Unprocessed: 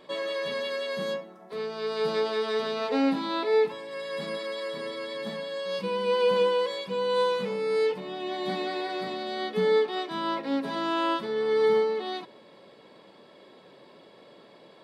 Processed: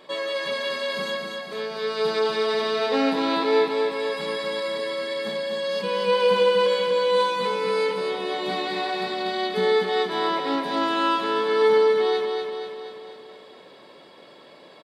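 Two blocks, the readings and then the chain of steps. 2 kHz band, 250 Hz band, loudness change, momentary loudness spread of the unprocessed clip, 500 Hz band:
+6.5 dB, +2.5 dB, +4.5 dB, 10 LU, +4.5 dB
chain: bass shelf 400 Hz -7 dB; feedback delay 242 ms, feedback 57%, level -4.5 dB; trim +5 dB

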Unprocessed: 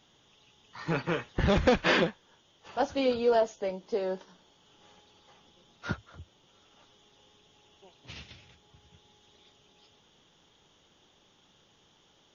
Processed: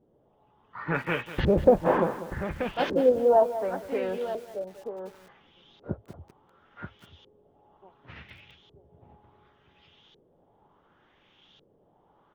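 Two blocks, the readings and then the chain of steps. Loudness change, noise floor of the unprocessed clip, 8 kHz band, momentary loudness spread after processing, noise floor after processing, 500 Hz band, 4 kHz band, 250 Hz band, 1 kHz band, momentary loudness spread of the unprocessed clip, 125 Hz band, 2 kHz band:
+2.5 dB, -65 dBFS, no reading, 20 LU, -65 dBFS, +5.0 dB, -6.5 dB, +2.0 dB, +4.0 dB, 19 LU, +1.0 dB, -2.0 dB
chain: echo from a far wall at 160 m, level -8 dB; LFO low-pass saw up 0.69 Hz 420–3900 Hz; bit-crushed delay 194 ms, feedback 35%, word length 7-bit, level -12.5 dB

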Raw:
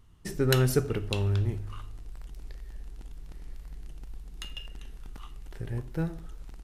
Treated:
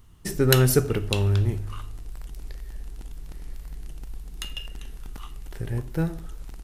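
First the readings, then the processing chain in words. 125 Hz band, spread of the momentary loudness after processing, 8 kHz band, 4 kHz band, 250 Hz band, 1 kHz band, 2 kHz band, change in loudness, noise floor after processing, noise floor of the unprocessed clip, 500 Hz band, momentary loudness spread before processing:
+5.0 dB, 22 LU, +9.0 dB, +6.0 dB, +5.0 dB, +5.0 dB, +5.5 dB, +5.0 dB, -42 dBFS, -47 dBFS, +5.0 dB, 21 LU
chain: treble shelf 9 kHz +8.5 dB; trim +5 dB

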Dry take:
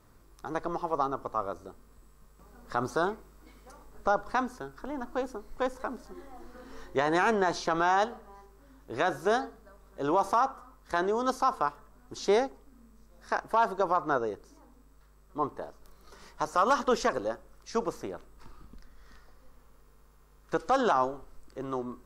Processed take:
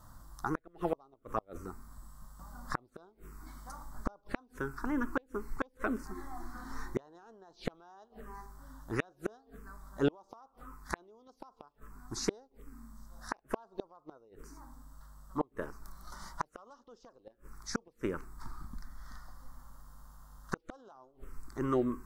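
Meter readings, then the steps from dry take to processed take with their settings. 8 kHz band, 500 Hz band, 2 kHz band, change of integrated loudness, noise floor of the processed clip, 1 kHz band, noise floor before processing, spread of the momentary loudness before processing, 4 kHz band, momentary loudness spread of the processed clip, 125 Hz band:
-3.5 dB, -10.0 dB, -9.0 dB, -9.5 dB, -70 dBFS, -14.5 dB, -59 dBFS, 18 LU, -8.5 dB, 21 LU, 0.0 dB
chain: touch-sensitive phaser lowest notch 400 Hz, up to 2.3 kHz, full sweep at -23 dBFS; inverted gate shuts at -25 dBFS, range -36 dB; trim +7 dB

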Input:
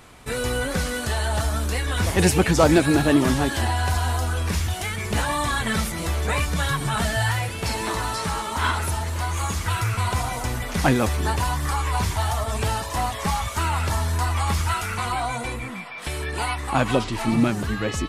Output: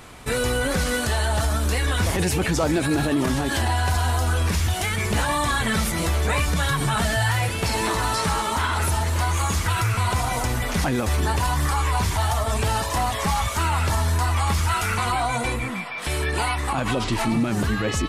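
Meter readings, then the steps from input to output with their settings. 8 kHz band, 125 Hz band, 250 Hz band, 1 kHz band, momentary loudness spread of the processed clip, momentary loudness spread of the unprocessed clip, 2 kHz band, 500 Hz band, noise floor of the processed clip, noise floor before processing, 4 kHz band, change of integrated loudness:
+1.5 dB, +1.0 dB, -1.5 dB, +1.5 dB, 2 LU, 8 LU, +1.0 dB, -1.0 dB, -27 dBFS, -32 dBFS, +1.5 dB, +0.5 dB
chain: peak limiter -18.5 dBFS, peak gain reduction 11 dB; trim +4.5 dB

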